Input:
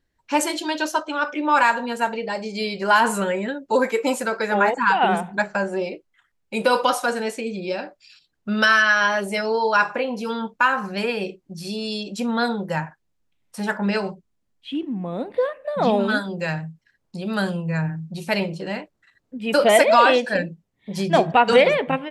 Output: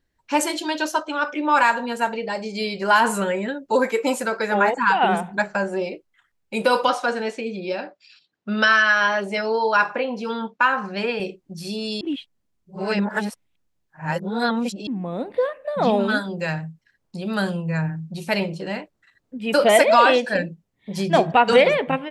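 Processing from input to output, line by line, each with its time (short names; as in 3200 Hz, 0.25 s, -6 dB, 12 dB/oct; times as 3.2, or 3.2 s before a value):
6.88–11.2 BPF 160–5300 Hz
12.01–14.87 reverse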